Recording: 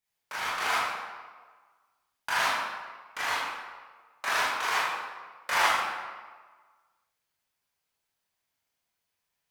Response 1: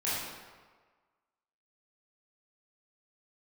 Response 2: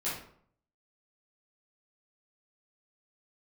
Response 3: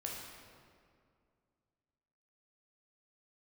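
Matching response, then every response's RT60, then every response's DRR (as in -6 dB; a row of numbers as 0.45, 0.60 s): 1; 1.5, 0.60, 2.2 s; -10.5, -10.5, -2.5 dB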